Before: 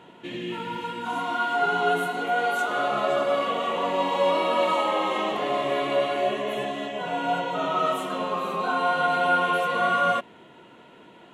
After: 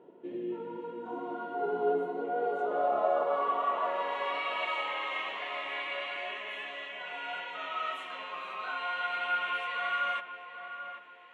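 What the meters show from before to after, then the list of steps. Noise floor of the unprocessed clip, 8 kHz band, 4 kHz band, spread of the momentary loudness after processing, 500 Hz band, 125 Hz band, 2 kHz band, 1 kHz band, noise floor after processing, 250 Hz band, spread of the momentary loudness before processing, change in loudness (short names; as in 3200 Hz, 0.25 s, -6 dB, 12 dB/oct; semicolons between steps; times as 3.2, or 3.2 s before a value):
-50 dBFS, under -20 dB, -7.5 dB, 11 LU, -8.5 dB, under -15 dB, -7.0 dB, -8.5 dB, -49 dBFS, -11.0 dB, 8 LU, -8.5 dB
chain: band-pass sweep 410 Hz -> 2200 Hz, 2.34–4.49; darkening echo 0.787 s, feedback 44%, low-pass 1600 Hz, level -8.5 dB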